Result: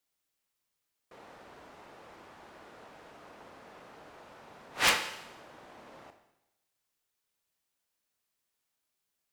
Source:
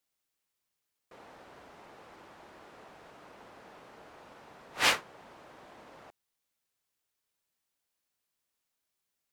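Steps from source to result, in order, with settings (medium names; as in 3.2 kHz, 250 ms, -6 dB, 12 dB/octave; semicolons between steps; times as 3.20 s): Schroeder reverb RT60 0.91 s, combs from 26 ms, DRR 7.5 dB; integer overflow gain 12 dB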